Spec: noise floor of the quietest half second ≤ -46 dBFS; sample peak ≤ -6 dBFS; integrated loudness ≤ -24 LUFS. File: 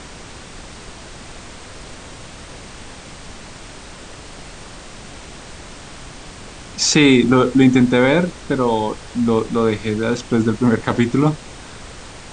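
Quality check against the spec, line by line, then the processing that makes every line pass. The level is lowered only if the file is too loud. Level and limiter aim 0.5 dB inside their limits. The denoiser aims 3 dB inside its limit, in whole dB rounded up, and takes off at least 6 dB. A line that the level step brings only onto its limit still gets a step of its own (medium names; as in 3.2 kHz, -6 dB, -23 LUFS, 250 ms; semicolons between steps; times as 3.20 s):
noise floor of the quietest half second -36 dBFS: fail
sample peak -1.5 dBFS: fail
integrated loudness -16.5 LUFS: fail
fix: noise reduction 6 dB, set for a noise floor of -36 dBFS; trim -8 dB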